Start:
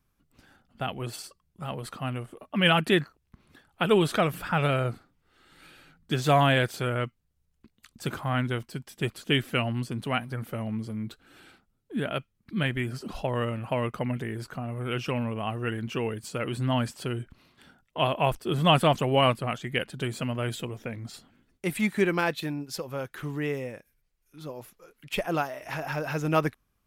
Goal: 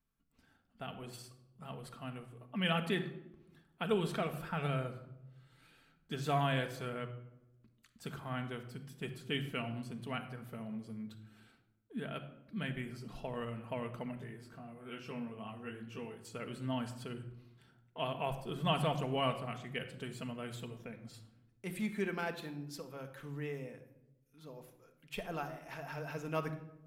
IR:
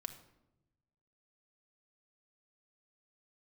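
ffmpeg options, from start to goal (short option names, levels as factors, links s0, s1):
-filter_complex "[0:a]asettb=1/sr,asplit=3[s0][s1][s2];[s0]atrim=end=14.154[s3];[s1]atrim=start=14.15:end=16.25,asetpts=PTS-STARTPTS,afade=t=in:d=0.004:c=qsin,afade=t=out:st=2.096:d=0.004:c=qsin,flanger=delay=19:depth=2.1:speed=2.3[s4];[s2]atrim=start=16.246[s5];[s3][s4]acrossfade=d=0.004:c1=hsin:c2=qsin[s6];[s6][s5]acrossfade=d=0.004:c1=qsin:c2=hsin[s7];[1:a]atrim=start_sample=2205[s8];[s7][s8]afir=irnorm=-1:irlink=0,volume=0.355"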